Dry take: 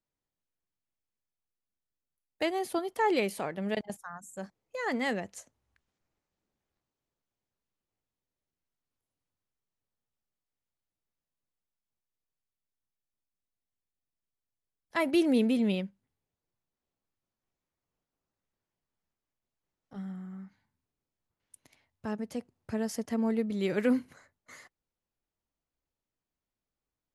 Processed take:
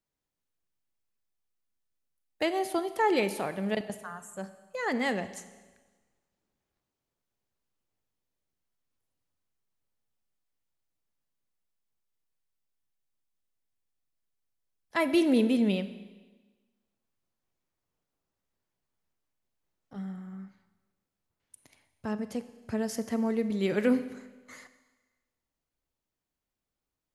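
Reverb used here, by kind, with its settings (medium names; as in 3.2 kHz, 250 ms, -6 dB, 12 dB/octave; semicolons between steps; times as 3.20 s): Schroeder reverb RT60 1.3 s, combs from 30 ms, DRR 12 dB; trim +1.5 dB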